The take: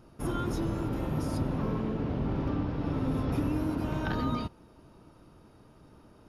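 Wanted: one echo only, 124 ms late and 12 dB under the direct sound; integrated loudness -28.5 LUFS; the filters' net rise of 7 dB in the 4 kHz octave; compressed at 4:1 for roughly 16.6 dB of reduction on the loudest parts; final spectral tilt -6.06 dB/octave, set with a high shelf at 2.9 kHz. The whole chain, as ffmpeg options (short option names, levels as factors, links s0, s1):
-af "highshelf=f=2900:g=7.5,equalizer=f=4000:t=o:g=3,acompressor=threshold=0.00447:ratio=4,aecho=1:1:124:0.251,volume=10"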